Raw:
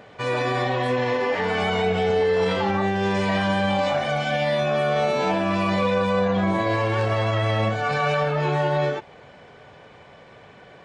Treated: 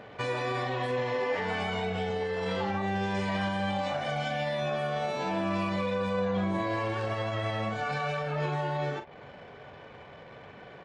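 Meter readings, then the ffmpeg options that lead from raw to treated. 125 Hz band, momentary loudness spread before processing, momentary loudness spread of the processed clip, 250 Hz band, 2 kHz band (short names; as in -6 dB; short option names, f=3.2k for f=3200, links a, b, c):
-8.5 dB, 2 LU, 18 LU, -7.5 dB, -8.0 dB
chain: -filter_complex "[0:a]alimiter=limit=-21.5dB:level=0:latency=1:release=382,anlmdn=0.00398,asplit=2[a][b];[b]adelay=42,volume=-9.5dB[c];[a][c]amix=inputs=2:normalize=0,volume=-1dB"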